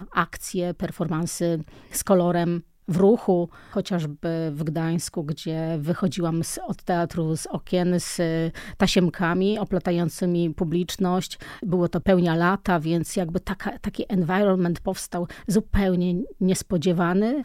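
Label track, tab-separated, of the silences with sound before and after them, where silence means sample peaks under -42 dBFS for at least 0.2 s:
2.610000	2.880000	silence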